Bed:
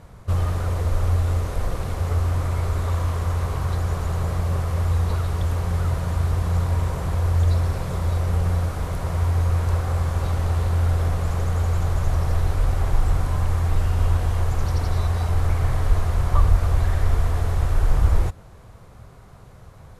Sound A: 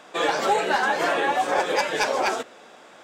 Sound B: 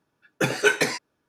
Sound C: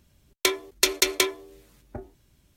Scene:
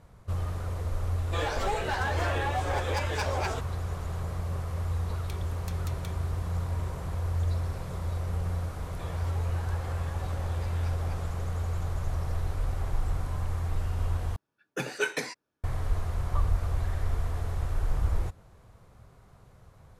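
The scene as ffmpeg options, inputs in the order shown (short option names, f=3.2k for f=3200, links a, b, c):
-filter_complex "[1:a]asplit=2[a][b];[0:a]volume=-9.5dB[c];[a]volume=17.5dB,asoftclip=hard,volume=-17.5dB[d];[3:a]acompressor=threshold=-37dB:ratio=6:attack=3.2:release=140:knee=1:detection=peak[e];[b]acompressor=threshold=-33dB:ratio=6:attack=3.2:release=140:knee=1:detection=peak[f];[c]asplit=2[g][h];[g]atrim=end=14.364[i];[2:a]atrim=end=1.28,asetpts=PTS-STARTPTS,volume=-9.5dB[j];[h]atrim=start=15.636[k];[d]atrim=end=3.03,asetpts=PTS-STARTPTS,volume=-8dB,afade=t=in:d=0.004:c=hsin,afade=t=out:st=3.026:d=0.004:c=hsin,adelay=1180[l];[e]atrim=end=2.56,asetpts=PTS-STARTPTS,volume=-8dB,afade=t=in:d=0.004:c=hsin,afade=t=out:st=2.556:d=0.004:c=hsin,adelay=213885S[m];[f]atrim=end=3.03,asetpts=PTS-STARTPTS,volume=-12dB,afade=t=in:d=0.004:c=hsin,afade=t=out:st=3.026:d=0.004:c=hsin,adelay=8850[n];[i][j]acrossfade=d=0.004:c1=hsin:c2=hsin[o];[o][k]acrossfade=d=0.004:c1=hsin:c2=hsin[p];[p][l][m][n]amix=inputs=4:normalize=0"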